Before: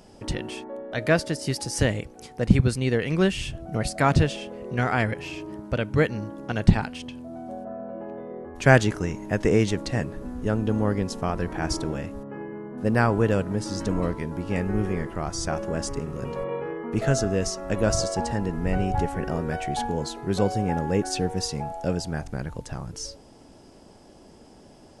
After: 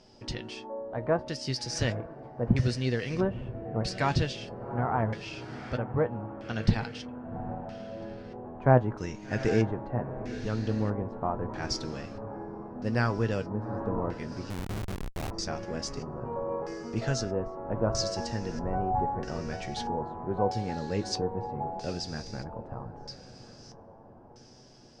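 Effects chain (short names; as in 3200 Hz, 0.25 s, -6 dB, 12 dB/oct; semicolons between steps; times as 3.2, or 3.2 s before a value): diffused feedback echo 0.777 s, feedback 46%, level -12 dB; LFO low-pass square 0.78 Hz 950–5100 Hz; flange 0.69 Hz, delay 7.9 ms, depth 1.2 ms, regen +57%; 14.5–15.31 Schmitt trigger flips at -27.5 dBFS; gain -3 dB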